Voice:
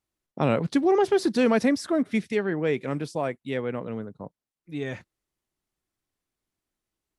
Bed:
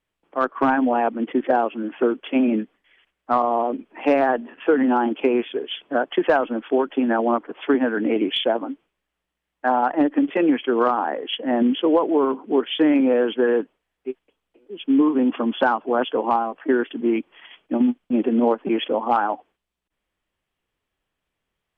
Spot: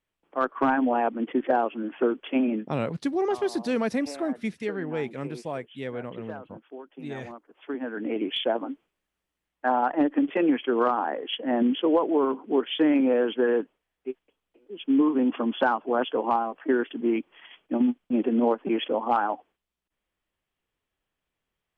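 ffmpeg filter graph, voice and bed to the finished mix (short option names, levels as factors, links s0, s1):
-filter_complex "[0:a]adelay=2300,volume=0.562[s0];[1:a]volume=5.01,afade=t=out:st=2.33:d=0.67:silence=0.125893,afade=t=in:st=7.49:d=1.11:silence=0.125893[s1];[s0][s1]amix=inputs=2:normalize=0"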